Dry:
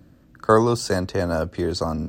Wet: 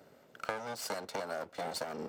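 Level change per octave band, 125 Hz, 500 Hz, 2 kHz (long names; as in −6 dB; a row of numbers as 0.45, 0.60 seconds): −27.5, −18.0, −11.0 decibels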